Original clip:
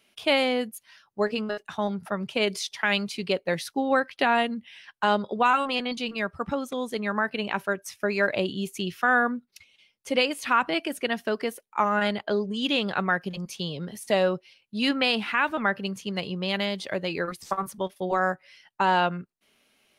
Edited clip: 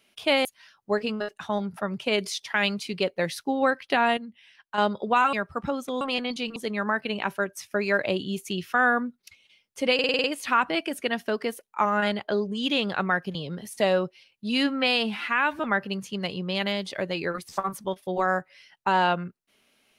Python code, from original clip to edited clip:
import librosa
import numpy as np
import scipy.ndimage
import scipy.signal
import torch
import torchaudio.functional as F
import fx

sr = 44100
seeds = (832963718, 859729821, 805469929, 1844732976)

y = fx.edit(x, sr, fx.cut(start_s=0.45, length_s=0.29),
    fx.clip_gain(start_s=4.46, length_s=0.61, db=-7.5),
    fx.move(start_s=5.62, length_s=0.55, to_s=6.85),
    fx.stutter(start_s=10.23, slice_s=0.05, count=7),
    fx.cut(start_s=13.34, length_s=0.31),
    fx.stretch_span(start_s=14.8, length_s=0.73, factor=1.5), tone=tone)